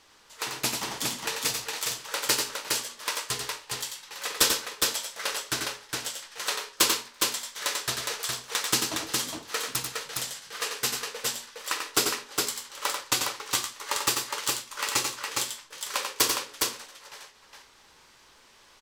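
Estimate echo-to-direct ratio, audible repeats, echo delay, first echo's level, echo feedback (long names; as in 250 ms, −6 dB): −1.5 dB, 2, 91 ms, −6.0 dB, repeats not evenly spaced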